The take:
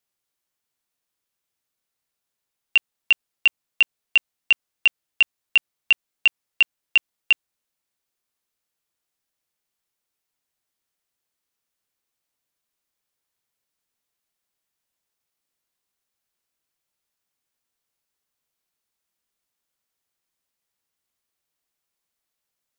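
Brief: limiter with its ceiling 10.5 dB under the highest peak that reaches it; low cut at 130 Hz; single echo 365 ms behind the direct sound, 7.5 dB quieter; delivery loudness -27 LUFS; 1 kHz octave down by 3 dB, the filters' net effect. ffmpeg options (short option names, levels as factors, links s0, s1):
-af "highpass=130,equalizer=f=1000:t=o:g=-4,alimiter=limit=0.112:level=0:latency=1,aecho=1:1:365:0.422,volume=1.68"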